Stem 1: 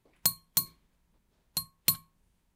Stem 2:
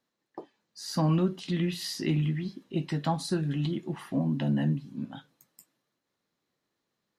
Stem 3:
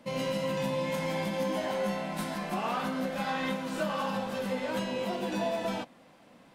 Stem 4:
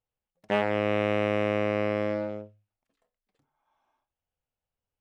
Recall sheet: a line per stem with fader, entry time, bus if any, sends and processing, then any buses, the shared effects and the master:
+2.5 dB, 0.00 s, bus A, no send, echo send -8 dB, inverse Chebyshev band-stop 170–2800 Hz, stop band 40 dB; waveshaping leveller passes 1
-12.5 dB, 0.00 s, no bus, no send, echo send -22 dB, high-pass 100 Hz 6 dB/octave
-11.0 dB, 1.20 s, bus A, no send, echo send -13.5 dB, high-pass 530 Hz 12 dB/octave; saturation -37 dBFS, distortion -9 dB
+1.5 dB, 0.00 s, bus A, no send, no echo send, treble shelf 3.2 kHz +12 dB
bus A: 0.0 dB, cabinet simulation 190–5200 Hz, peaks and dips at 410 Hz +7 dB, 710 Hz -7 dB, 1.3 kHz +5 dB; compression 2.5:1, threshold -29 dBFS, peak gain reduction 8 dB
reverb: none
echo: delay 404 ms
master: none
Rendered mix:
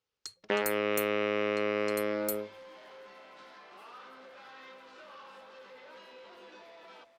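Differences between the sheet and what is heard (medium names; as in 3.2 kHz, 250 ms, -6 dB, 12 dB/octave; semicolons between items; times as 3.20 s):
stem 1 +2.5 dB -> -4.5 dB; stem 2: muted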